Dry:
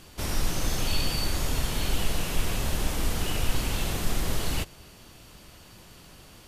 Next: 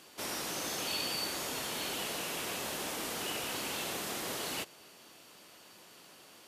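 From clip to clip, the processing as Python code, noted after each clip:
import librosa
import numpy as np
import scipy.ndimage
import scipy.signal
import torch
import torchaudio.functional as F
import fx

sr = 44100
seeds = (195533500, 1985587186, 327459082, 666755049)

y = scipy.signal.sosfilt(scipy.signal.butter(2, 310.0, 'highpass', fs=sr, output='sos'), x)
y = F.gain(torch.from_numpy(y), -3.5).numpy()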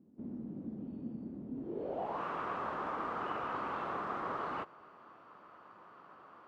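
y = fx.filter_sweep_lowpass(x, sr, from_hz=230.0, to_hz=1200.0, start_s=1.52, end_s=2.23, q=4.3)
y = F.gain(torch.from_numpy(y), -2.0).numpy()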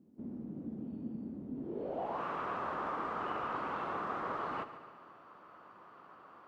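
y = fx.echo_heads(x, sr, ms=72, heads='first and second', feedback_pct=59, wet_db=-16.5)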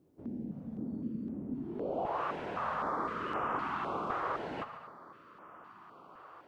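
y = fx.filter_held_notch(x, sr, hz=3.9, low_hz=220.0, high_hz=4200.0)
y = F.gain(torch.from_numpy(y), 4.0).numpy()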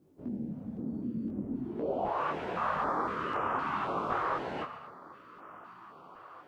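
y = fx.detune_double(x, sr, cents=25)
y = F.gain(torch.from_numpy(y), 6.5).numpy()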